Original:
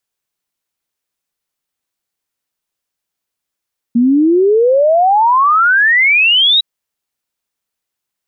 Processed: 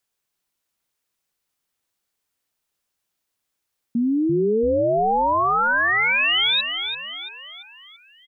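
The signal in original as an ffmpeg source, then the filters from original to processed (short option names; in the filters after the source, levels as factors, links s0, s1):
-f lavfi -i "aevalsrc='0.447*clip(min(t,2.66-t)/0.01,0,1)*sin(2*PI*230*2.66/log(3900/230)*(exp(log(3900/230)*t/2.66)-1))':d=2.66:s=44100"
-filter_complex "[0:a]alimiter=limit=0.141:level=0:latency=1:release=38,asplit=2[s0][s1];[s1]asplit=6[s2][s3][s4][s5][s6][s7];[s2]adelay=339,afreqshift=-86,volume=0.422[s8];[s3]adelay=678,afreqshift=-172,volume=0.202[s9];[s4]adelay=1017,afreqshift=-258,volume=0.0966[s10];[s5]adelay=1356,afreqshift=-344,volume=0.0468[s11];[s6]adelay=1695,afreqshift=-430,volume=0.0224[s12];[s7]adelay=2034,afreqshift=-516,volume=0.0107[s13];[s8][s9][s10][s11][s12][s13]amix=inputs=6:normalize=0[s14];[s0][s14]amix=inputs=2:normalize=0"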